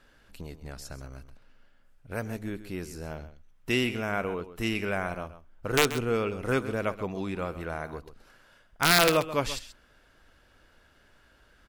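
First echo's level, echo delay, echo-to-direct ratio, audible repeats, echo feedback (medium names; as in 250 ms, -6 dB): -13.5 dB, 132 ms, -13.5 dB, 1, no regular repeats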